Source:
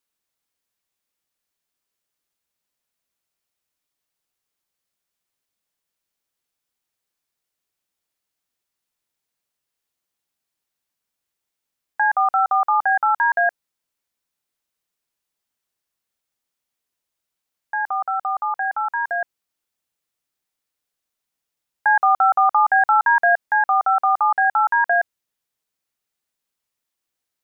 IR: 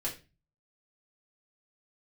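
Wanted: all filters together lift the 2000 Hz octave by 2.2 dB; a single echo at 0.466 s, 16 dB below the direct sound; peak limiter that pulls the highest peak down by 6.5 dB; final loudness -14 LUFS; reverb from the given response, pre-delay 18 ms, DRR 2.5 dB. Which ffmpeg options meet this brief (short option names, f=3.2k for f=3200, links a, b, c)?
-filter_complex "[0:a]equalizer=f=2k:t=o:g=3,alimiter=limit=-13.5dB:level=0:latency=1,aecho=1:1:466:0.158,asplit=2[a][b];[1:a]atrim=start_sample=2205,adelay=18[c];[b][c]afir=irnorm=-1:irlink=0,volume=-5.5dB[d];[a][d]amix=inputs=2:normalize=0,volume=7.5dB"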